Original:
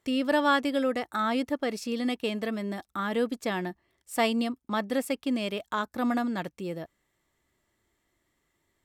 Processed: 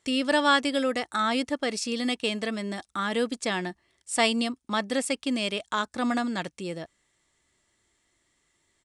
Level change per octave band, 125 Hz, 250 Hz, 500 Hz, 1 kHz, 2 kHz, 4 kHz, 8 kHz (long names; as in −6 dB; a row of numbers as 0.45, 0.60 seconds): 0.0, 0.0, +0.5, +1.5, +4.0, +7.0, +9.0 decibels